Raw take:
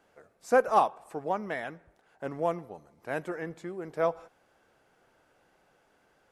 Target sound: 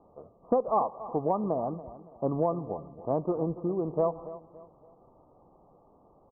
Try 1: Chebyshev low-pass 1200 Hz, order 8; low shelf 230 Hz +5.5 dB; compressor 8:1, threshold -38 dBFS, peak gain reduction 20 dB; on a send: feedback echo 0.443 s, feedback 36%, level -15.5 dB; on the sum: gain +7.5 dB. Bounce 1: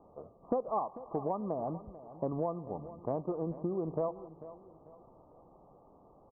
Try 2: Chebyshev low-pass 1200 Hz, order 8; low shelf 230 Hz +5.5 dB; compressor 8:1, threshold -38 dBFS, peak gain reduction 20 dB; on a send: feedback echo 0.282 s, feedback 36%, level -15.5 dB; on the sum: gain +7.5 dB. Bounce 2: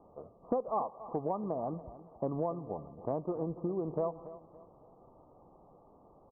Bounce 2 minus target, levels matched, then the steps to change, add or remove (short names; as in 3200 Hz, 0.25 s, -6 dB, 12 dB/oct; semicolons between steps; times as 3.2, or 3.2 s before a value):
compressor: peak gain reduction +7 dB
change: compressor 8:1, threshold -30 dBFS, peak gain reduction 13 dB